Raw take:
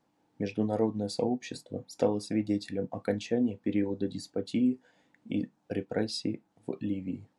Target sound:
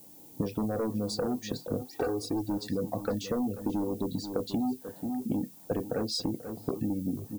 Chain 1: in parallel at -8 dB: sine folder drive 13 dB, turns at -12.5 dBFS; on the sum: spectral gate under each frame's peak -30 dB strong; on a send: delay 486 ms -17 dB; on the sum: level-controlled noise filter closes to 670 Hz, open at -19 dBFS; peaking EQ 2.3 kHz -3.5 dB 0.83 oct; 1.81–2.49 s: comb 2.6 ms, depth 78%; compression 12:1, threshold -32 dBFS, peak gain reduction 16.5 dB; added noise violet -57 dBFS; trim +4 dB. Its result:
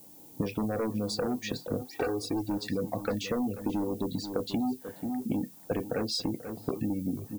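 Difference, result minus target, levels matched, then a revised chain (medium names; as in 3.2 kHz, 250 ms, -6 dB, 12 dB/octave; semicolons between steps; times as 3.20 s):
2 kHz band +5.0 dB
in parallel at -8 dB: sine folder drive 13 dB, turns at -12.5 dBFS; on the sum: spectral gate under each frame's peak -30 dB strong; on a send: delay 486 ms -17 dB; on the sum: level-controlled noise filter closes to 670 Hz, open at -19 dBFS; peaking EQ 2.3 kHz -15 dB 0.83 oct; 1.81–2.49 s: comb 2.6 ms, depth 78%; compression 12:1, threshold -32 dBFS, peak gain reduction 16.5 dB; added noise violet -57 dBFS; trim +4 dB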